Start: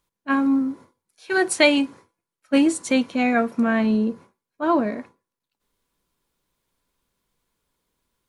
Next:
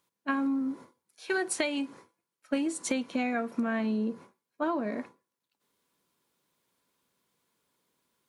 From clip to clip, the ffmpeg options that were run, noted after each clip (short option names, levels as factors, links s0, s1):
-af "highpass=150,acompressor=threshold=0.0501:ratio=16"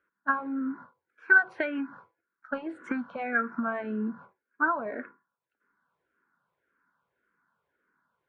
-filter_complex "[0:a]lowpass=f=1500:t=q:w=7,asplit=2[s0][s1];[s1]afreqshift=-1.8[s2];[s0][s2]amix=inputs=2:normalize=1"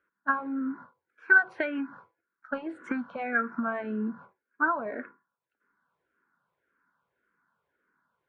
-af anull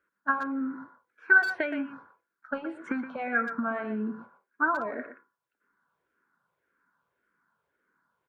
-filter_complex "[0:a]asplit=2[s0][s1];[s1]adelay=120,highpass=300,lowpass=3400,asoftclip=type=hard:threshold=0.126,volume=0.355[s2];[s0][s2]amix=inputs=2:normalize=0"